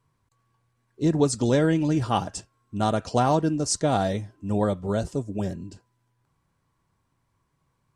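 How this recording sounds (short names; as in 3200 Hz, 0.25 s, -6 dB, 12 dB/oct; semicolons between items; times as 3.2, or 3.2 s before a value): noise floor -73 dBFS; spectral tilt -5.5 dB/oct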